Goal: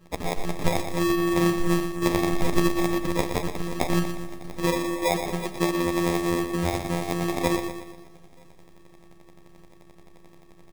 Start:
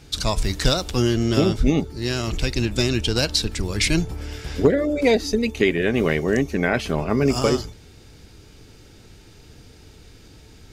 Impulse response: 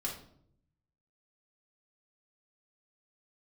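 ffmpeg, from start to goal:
-filter_complex "[0:a]asettb=1/sr,asplit=3[s0][s1][s2];[s0]atrim=end=2.024[s3];[s1]atrim=start=2.02:end=2.69,asetpts=PTS-STARTPTS,afade=t=in:d=0.004:c=qsin,afade=t=out:st=0.666:d=0.004:c=qsin,acontrast=73[s4];[s2]atrim=start=2.686[s5];[s3][s4]acrossfade=d=0.004:c1=hsin:c2=qsin[s6];[s6][s5]acrossfade=d=0.004:c1=qsin:c2=hsin,afftfilt=real='hypot(re,im)*cos(PI*b)':imag='0':win_size=1024:overlap=0.75,asplit=2[s7][s8];[s8]adelay=932.9,volume=0.0316,highshelf=f=4000:g=-21[s9];[s7][s9]amix=inputs=2:normalize=0,acrusher=samples=30:mix=1:aa=0.000001,asplit=2[s10][s11];[s11]aecho=0:1:119|238|357|476|595|714:0.398|0.195|0.0956|0.0468|0.023|0.0112[s12];[s10][s12]amix=inputs=2:normalize=0,volume=0.841"

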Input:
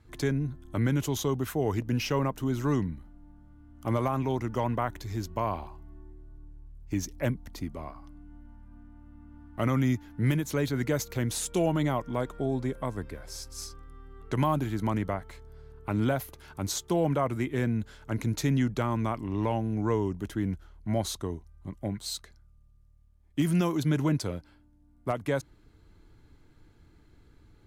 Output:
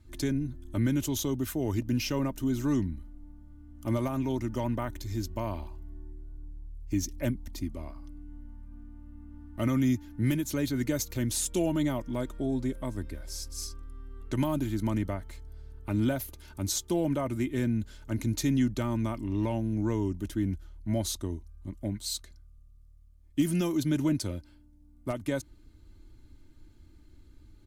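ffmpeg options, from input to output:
-af "equalizer=f=1000:t=o:w=2.9:g=-10,aecho=1:1:3.3:0.5,volume=1.33"

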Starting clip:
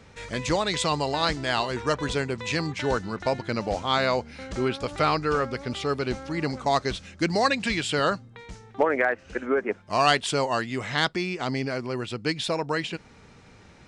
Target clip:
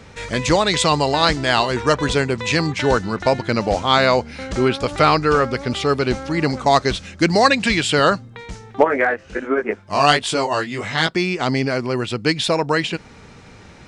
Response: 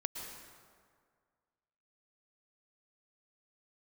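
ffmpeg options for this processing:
-filter_complex "[0:a]asettb=1/sr,asplit=3[s0][s1][s2];[s0]atrim=end=8.844[s3];[s1]atrim=start=8.84:end=11.16,asetpts=PTS-STARTPTS,afade=t=in:d=0.004:c=qsin,afade=t=out:st=2.316:d=0.004:c=qsin,flanger=delay=17.5:depth=3.7:speed=1.3[s4];[s2]atrim=start=11.156[s5];[s3][s4]acrossfade=d=0.004:c1=hsin:c2=qsin[s6];[s6][s5]acrossfade=d=0.004:c1=qsin:c2=hsin,volume=2.66"

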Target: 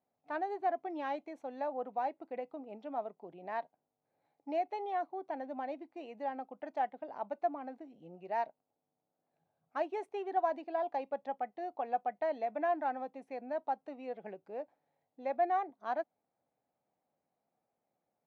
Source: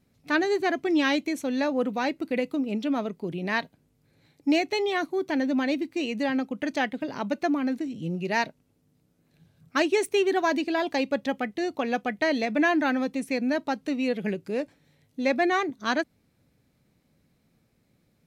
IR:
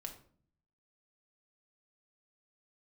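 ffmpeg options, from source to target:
-af "bandpass=f=760:t=q:w=3.9:csg=0,volume=0.841"

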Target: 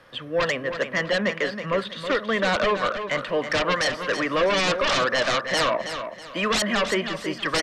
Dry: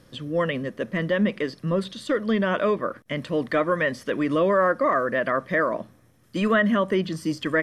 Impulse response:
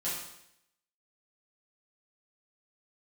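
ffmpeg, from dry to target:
-filter_complex "[0:a]acrossover=split=330|540|3200[s0][s1][s2][s3];[s2]aeval=exprs='0.237*sin(PI/2*4.47*val(0)/0.237)':c=same[s4];[s0][s1][s4][s3]amix=inputs=4:normalize=0,aecho=1:1:323|646|969|1292:0.355|0.117|0.0386|0.0128,volume=0.447"

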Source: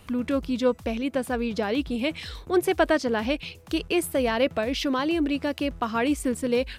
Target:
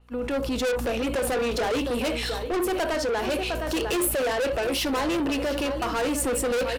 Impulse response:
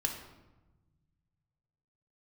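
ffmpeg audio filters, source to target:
-filter_complex "[0:a]highpass=f=390:w=0.5412,highpass=f=390:w=1.3066,aecho=1:1:708:0.178,aeval=exprs='val(0)+0.002*(sin(2*PI*60*n/s)+sin(2*PI*2*60*n/s)/2+sin(2*PI*3*60*n/s)/3+sin(2*PI*4*60*n/s)/4+sin(2*PI*5*60*n/s)/5)':c=same,agate=range=0.0794:threshold=0.01:ratio=16:detection=peak,dynaudnorm=f=100:g=7:m=6.31,tiltshelf=f=680:g=6,asplit=2[s0][s1];[1:a]atrim=start_sample=2205,afade=t=out:st=0.18:d=0.01,atrim=end_sample=8379,asetrate=70560,aresample=44100[s2];[s1][s2]afir=irnorm=-1:irlink=0,volume=0.841[s3];[s0][s3]amix=inputs=2:normalize=0,asoftclip=type=tanh:threshold=0.119,alimiter=level_in=2.24:limit=0.0631:level=0:latency=1:release=60,volume=0.447,adynamicequalizer=threshold=0.00178:dfrequency=6800:dqfactor=0.7:tfrequency=6800:tqfactor=0.7:attack=5:release=100:ratio=0.375:range=3.5:mode=boostabove:tftype=highshelf,volume=2.51"

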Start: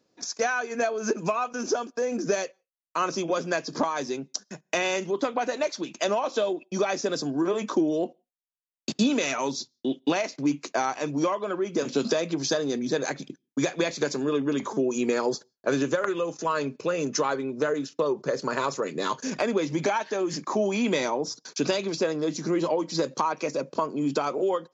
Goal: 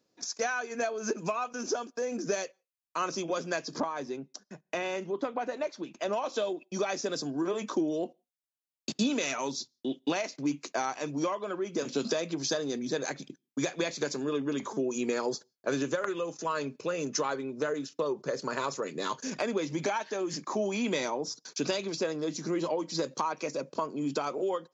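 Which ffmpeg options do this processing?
-af "asetnsamples=n=441:p=0,asendcmd='3.8 highshelf g -10.5;6.13 highshelf g 3.5',highshelf=f=3300:g=3.5,volume=0.531"

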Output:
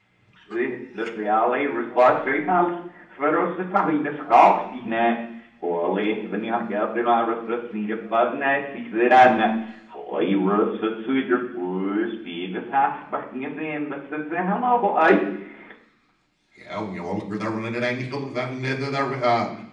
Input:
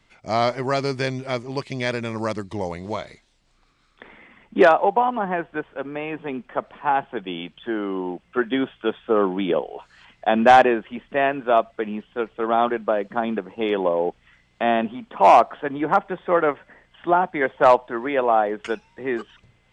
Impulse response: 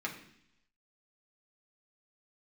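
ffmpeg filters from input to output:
-filter_complex "[0:a]areverse[s0];[1:a]atrim=start_sample=2205[s1];[s0][s1]afir=irnorm=-1:irlink=0,volume=0.75"

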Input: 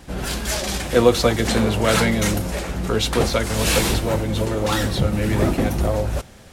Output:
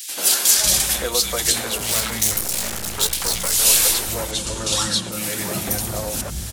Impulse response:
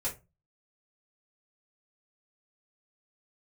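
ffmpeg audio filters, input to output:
-filter_complex "[0:a]lowshelf=f=470:g=-4.5,asettb=1/sr,asplit=3[s0][s1][s2];[s0]atrim=end=1.774[s3];[s1]atrim=start=1.77:end=3.53,asetpts=PTS-STARTPTS,afade=t=in:d=0.004:c=qsin,afade=t=out:st=1.756:d=0.004:c=qsin,aeval=exprs='max(val(0),0)':c=same[s4];[s2]atrim=start=3.526[s5];[s3][s4]acrossfade=d=0.004:c1=hsin:c2=qsin[s6];[s6][s5]acrossfade=d=0.004:c1=qsin:c2=hsin,asettb=1/sr,asplit=3[s7][s8][s9];[s7]atrim=end=4.314[s10];[s8]atrim=start=4.31:end=5.12,asetpts=PTS-STARTPTS,afade=t=in:d=0.004:c=qsin,afade=t=out:st=0.806:d=0.004:c=qsin,highpass=130,equalizer=f=190:t=q:w=4:g=9,equalizer=f=440:t=q:w=4:g=-5,equalizer=f=720:t=q:w=4:g=-6,equalizer=f=2000:t=q:w=4:g=-7,lowpass=f=9100:w=0.5412,lowpass=f=9100:w=1.3066[s11];[s9]atrim=start=5.116[s12];[s10][s11]acrossfade=d=0.004:c1=hsin:c2=qsin[s13];[s13][s12]acrossfade=d=0.004:c1=qsin:c2=hsin,acompressor=threshold=0.0282:ratio=4,acrossover=split=260|2200[s14][s15][s16];[s15]adelay=90[s17];[s14]adelay=560[s18];[s18][s17][s16]amix=inputs=3:normalize=0,crystalizer=i=6:c=0,volume=1.78"

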